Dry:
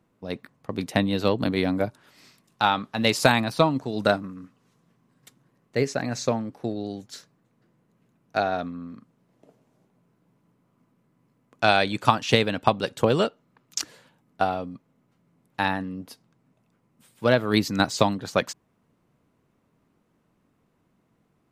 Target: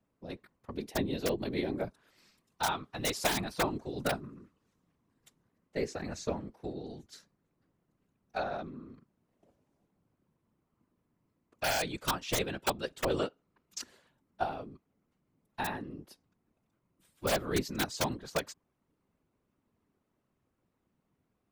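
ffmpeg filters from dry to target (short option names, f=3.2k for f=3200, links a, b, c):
-filter_complex "[0:a]asettb=1/sr,asplit=3[a][b][c];[a]atrim=end=0.764[d];[b]atrim=start=0.76:end=1.76,asetpts=PTS-STARTPTS,afade=t=in:d=0.004:c=qsin,afade=t=out:st=0.996:d=0.004:c=qsin,equalizer=f=160:t=o:w=0.33:g=-7,equalizer=f=315:t=o:w=0.33:g=5,equalizer=f=1.25k:t=o:w=0.33:g=-10,equalizer=f=8k:t=o:w=0.33:g=-4[e];[c]atrim=start=1.756[f];[d][e]acrossfade=d=0.004:c1=hsin:c2=qsin[g];[g][f]acrossfade=d=0.004:c1=qsin:c2=hsin,aeval=exprs='(mod(2.37*val(0)+1,2)-1)/2.37':c=same,afftfilt=real='hypot(re,im)*cos(2*PI*random(0))':imag='hypot(re,im)*sin(2*PI*random(1))':win_size=512:overlap=0.75,adynamicequalizer=threshold=0.00447:dfrequency=400:dqfactor=5.1:tfrequency=400:tqfactor=5.1:attack=5:release=100:ratio=0.375:range=1.5:mode=boostabove:tftype=bell,volume=-4.5dB"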